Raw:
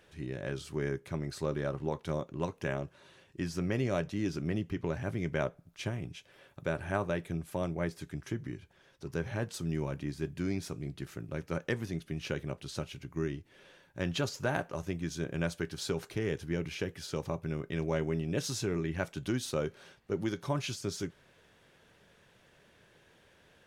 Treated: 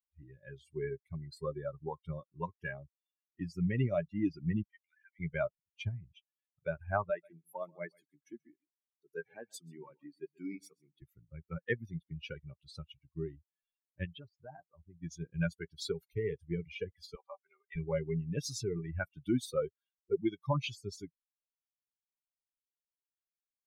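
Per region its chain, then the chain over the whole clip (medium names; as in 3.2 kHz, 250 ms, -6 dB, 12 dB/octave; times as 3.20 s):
4.63–5.20 s: elliptic band-pass 1.6–7.9 kHz + band-stop 2.6 kHz, Q 13
7.10–11.02 s: high-pass 230 Hz + delay 133 ms -9.5 dB
14.05–15.03 s: low-pass 1.4 kHz 6 dB/octave + compression 1.5:1, threshold -43 dBFS
17.15–17.76 s: band-pass 600–3700 Hz + comb 5.1 ms, depth 43%
whole clip: expander on every frequency bin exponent 3; treble shelf 4.9 kHz -7.5 dB; trim +6.5 dB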